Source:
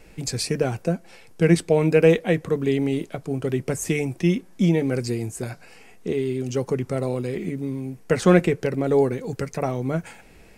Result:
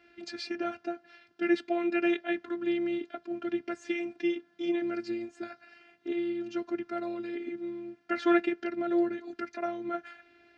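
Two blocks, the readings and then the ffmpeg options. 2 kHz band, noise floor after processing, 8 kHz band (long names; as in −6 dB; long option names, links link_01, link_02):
−6.0 dB, −65 dBFS, below −20 dB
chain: -af "afftfilt=real='hypot(re,im)*cos(PI*b)':imag='0':win_size=512:overlap=0.75,highpass=170,equalizer=frequency=480:width_type=q:width=4:gain=-9,equalizer=frequency=1000:width_type=q:width=4:gain=-7,equalizer=frequency=1500:width_type=q:width=4:gain=9,lowpass=frequency=4300:width=0.5412,lowpass=frequency=4300:width=1.3066,volume=-3dB"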